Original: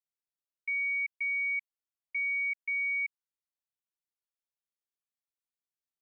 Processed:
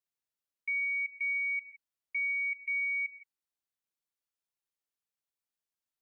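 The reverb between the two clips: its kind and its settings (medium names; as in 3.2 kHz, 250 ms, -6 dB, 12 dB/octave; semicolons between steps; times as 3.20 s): gated-style reverb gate 180 ms rising, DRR 12 dB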